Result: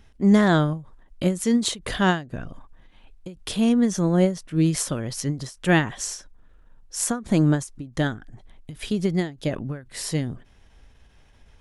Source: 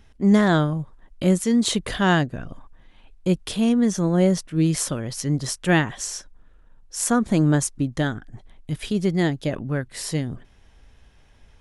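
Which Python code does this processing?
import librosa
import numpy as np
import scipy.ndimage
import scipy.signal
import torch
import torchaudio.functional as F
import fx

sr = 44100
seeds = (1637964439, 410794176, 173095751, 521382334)

y = fx.end_taper(x, sr, db_per_s=160.0)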